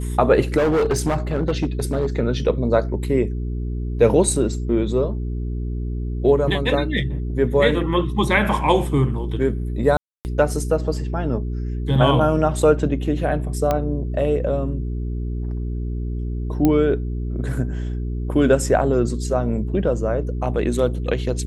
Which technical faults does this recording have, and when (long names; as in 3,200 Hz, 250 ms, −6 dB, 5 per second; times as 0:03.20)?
mains hum 60 Hz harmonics 7 −25 dBFS
0:00.57–0:02.07: clipping −15 dBFS
0:09.97–0:10.25: drop-out 279 ms
0:13.71: click −8 dBFS
0:16.65: click −6 dBFS